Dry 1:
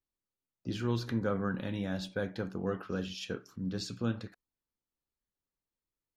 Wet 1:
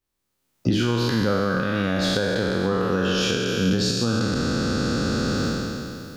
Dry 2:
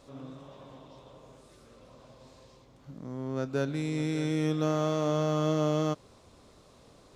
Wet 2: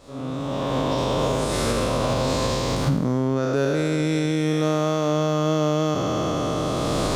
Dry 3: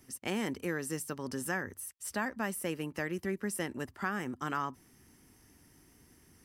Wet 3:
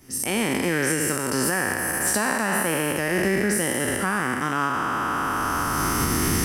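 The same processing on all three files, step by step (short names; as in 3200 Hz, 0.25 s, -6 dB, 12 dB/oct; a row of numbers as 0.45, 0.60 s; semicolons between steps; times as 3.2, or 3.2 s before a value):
spectral trails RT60 2.64 s; recorder AGC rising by 23 dB/s; match loudness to -23 LUFS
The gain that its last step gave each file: +6.0, +5.5, +6.0 dB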